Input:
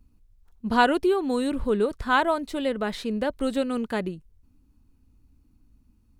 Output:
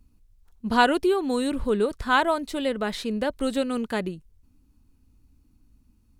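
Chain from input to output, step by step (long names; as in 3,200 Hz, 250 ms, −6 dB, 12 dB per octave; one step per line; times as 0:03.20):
parametric band 9,000 Hz +4 dB 2.9 octaves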